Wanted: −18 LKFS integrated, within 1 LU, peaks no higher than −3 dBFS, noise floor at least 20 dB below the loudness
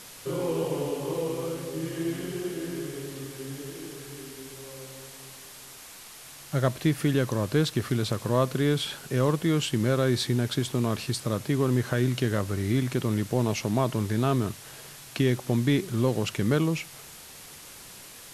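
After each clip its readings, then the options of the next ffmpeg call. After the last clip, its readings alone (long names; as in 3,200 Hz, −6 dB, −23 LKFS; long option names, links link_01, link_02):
background noise floor −46 dBFS; target noise floor −48 dBFS; integrated loudness −27.5 LKFS; sample peak −9.5 dBFS; target loudness −18.0 LKFS
→ -af "afftdn=noise_reduction=6:noise_floor=-46"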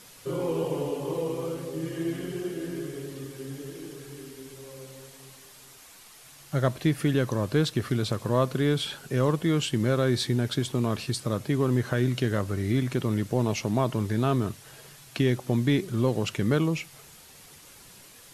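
background noise floor −51 dBFS; integrated loudness −27.5 LKFS; sample peak −10.0 dBFS; target loudness −18.0 LKFS
→ -af "volume=9.5dB,alimiter=limit=-3dB:level=0:latency=1"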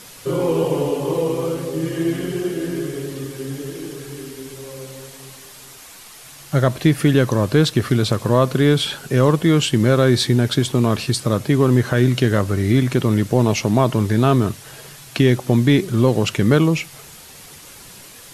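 integrated loudness −18.0 LKFS; sample peak −3.0 dBFS; background noise floor −41 dBFS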